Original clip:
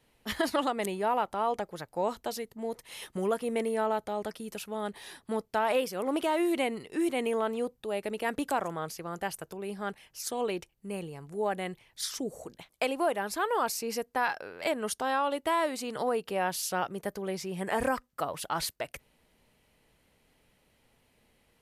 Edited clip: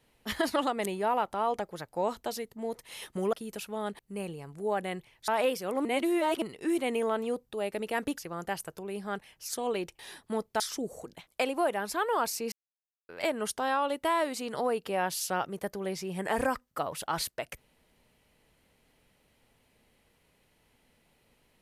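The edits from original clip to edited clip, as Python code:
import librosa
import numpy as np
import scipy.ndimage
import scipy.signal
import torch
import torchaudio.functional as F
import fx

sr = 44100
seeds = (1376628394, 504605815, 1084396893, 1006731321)

y = fx.edit(x, sr, fx.cut(start_s=3.33, length_s=0.99),
    fx.swap(start_s=4.98, length_s=0.61, other_s=10.73, other_length_s=1.29),
    fx.reverse_span(start_s=6.16, length_s=0.57),
    fx.cut(start_s=8.49, length_s=0.43),
    fx.silence(start_s=13.94, length_s=0.57), tone=tone)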